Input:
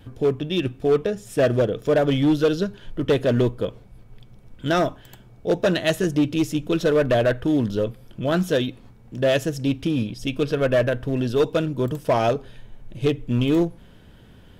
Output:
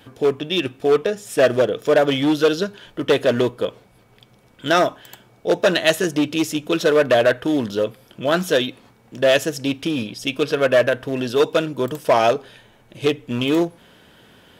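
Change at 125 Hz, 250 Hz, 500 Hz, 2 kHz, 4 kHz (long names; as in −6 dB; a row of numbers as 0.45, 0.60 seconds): −5.5, 0.0, +3.5, +6.5, +7.0 decibels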